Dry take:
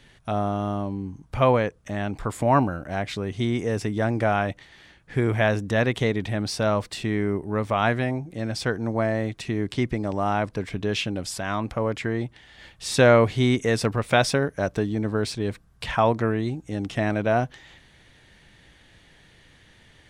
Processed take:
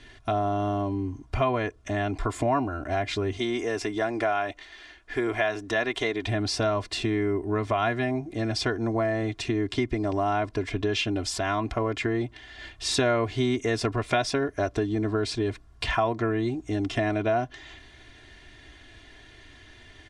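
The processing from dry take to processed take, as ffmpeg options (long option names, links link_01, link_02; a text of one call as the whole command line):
ffmpeg -i in.wav -filter_complex "[0:a]asettb=1/sr,asplit=3[link_01][link_02][link_03];[link_01]atrim=end=3.374[link_04];[link_02]atrim=start=3.37:end=6.27,asetpts=PTS-STARTPTS,afade=type=in:duration=0.004:curve=qsin,afade=type=out:start_time=2.896:duration=0.004:curve=qsin,equalizer=frequency=120:width_type=o:width=2.1:gain=-14.5[link_05];[link_03]atrim=start=6.266[link_06];[link_04][link_05]acrossfade=duration=0.004:curve1=hsin:curve2=qsin[link_07];[link_07][link_06]acrossfade=duration=0.004:curve1=qsin:curve2=hsin,lowpass=7300,aecho=1:1:2.9:0.82,acompressor=threshold=-26dB:ratio=3,volume=2dB" out.wav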